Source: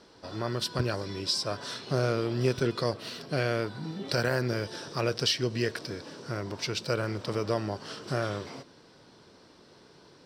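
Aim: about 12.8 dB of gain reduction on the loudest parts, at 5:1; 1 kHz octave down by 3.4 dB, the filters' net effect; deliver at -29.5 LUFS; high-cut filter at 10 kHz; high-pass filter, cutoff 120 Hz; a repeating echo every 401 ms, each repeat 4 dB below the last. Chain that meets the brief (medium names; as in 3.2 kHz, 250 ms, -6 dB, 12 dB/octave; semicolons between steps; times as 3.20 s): high-pass 120 Hz; low-pass 10 kHz; peaking EQ 1 kHz -5 dB; compression 5:1, threshold -38 dBFS; feedback delay 401 ms, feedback 63%, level -4 dB; trim +10.5 dB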